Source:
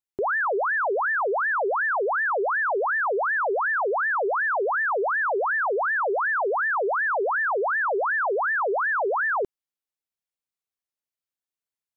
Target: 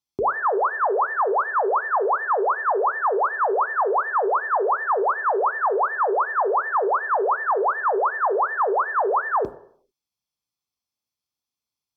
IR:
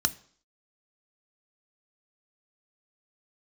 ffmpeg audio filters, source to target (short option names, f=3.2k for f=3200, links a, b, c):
-filter_complex "[0:a]equalizer=f=1.5k:w=2.3:g=-9[a];[1:a]atrim=start_sample=2205,asetrate=36603,aresample=44100[b];[a][b]afir=irnorm=-1:irlink=0,volume=-4dB"